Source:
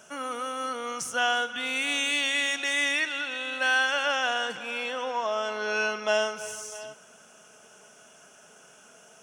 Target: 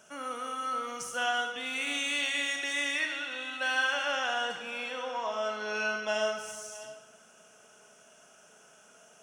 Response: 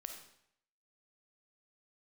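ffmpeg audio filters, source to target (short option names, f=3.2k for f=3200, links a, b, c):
-filter_complex "[0:a]asettb=1/sr,asplit=3[a][b][c];[a]atrim=end=0.694[d];[b]atrim=start=0.69:end=1.24,asetpts=PTS-STARTPTS,afade=t=in:d=0.004:c=qsin,afade=t=out:st=0.546:d=0.004:c=qsin,aeval=exprs='sgn(val(0))*max(abs(val(0))-0.00178,0)':c=same[e];[c]atrim=start=1.236[f];[d][e]acrossfade=d=0.004:c1=hsin:c2=qsin[g];[g][f]acrossfade=d=0.004:c1=qsin:c2=hsin[h];[1:a]atrim=start_sample=2205[i];[h][i]afir=irnorm=-1:irlink=0,volume=-1dB"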